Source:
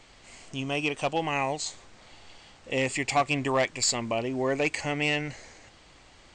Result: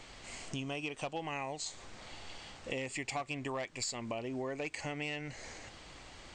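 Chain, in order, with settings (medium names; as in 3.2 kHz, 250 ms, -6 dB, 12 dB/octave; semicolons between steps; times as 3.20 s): compression 6:1, threshold -39 dBFS, peak gain reduction 17.5 dB; trim +2.5 dB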